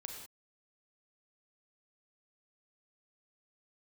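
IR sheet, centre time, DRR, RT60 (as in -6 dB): 40 ms, 2.0 dB, no single decay rate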